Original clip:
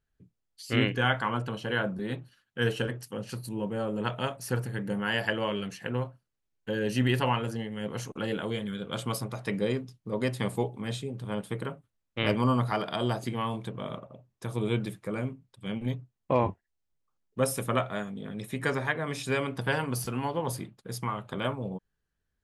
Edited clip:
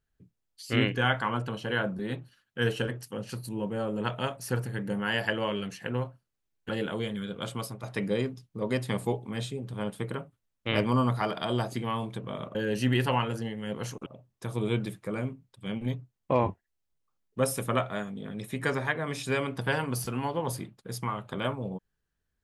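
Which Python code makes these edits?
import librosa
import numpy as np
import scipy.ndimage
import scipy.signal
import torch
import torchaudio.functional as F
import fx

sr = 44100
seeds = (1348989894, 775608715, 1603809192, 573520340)

y = fx.edit(x, sr, fx.move(start_s=6.69, length_s=1.51, to_s=14.06),
    fx.fade_out_to(start_s=8.82, length_s=0.52, floor_db=-7.5), tone=tone)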